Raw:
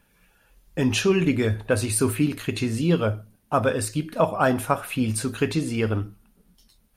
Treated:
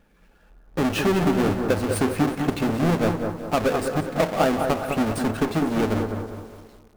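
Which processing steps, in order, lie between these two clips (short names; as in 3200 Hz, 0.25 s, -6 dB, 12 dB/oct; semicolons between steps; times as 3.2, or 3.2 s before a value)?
half-waves squared off; high shelf 2600 Hz -10.5 dB; compressor 6:1, threshold -17 dBFS, peak gain reduction 5.5 dB; bell 120 Hz -14 dB 0.44 oct; notch 980 Hz, Q 16; on a send: analogue delay 0.205 s, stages 2048, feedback 43%, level -5.5 dB; on the sum: lo-fi delay 0.184 s, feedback 55%, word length 7-bit, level -13 dB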